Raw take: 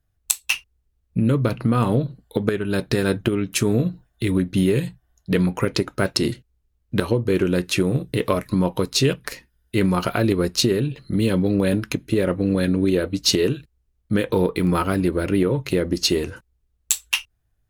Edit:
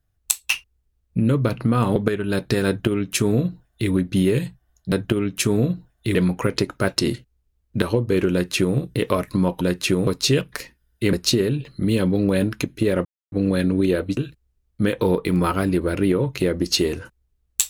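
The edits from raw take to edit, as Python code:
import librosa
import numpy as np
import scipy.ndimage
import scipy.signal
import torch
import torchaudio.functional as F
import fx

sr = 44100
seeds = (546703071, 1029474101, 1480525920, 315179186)

y = fx.edit(x, sr, fx.cut(start_s=1.96, length_s=0.41),
    fx.duplicate(start_s=3.08, length_s=1.23, to_s=5.33),
    fx.duplicate(start_s=7.49, length_s=0.46, to_s=8.79),
    fx.cut(start_s=9.85, length_s=0.59),
    fx.insert_silence(at_s=12.36, length_s=0.27),
    fx.cut(start_s=13.21, length_s=0.27), tone=tone)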